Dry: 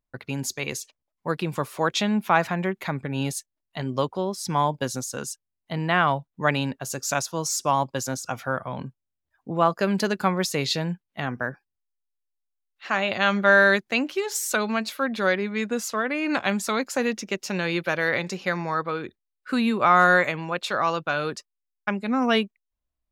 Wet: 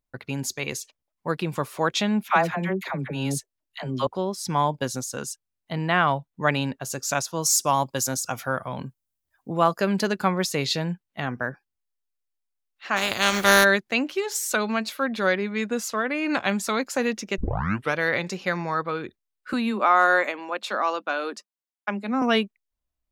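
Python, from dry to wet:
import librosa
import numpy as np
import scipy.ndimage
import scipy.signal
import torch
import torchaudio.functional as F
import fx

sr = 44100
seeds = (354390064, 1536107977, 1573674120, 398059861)

y = fx.dispersion(x, sr, late='lows', ms=69.0, hz=690.0, at=(2.23, 4.07))
y = fx.high_shelf(y, sr, hz=6200.0, db=11.5, at=(7.42, 9.81))
y = fx.spec_flatten(y, sr, power=0.44, at=(12.96, 13.63), fade=0.02)
y = fx.cheby_ripple_highpass(y, sr, hz=200.0, ripple_db=3, at=(19.53, 22.22))
y = fx.edit(y, sr, fx.tape_start(start_s=17.38, length_s=0.57), tone=tone)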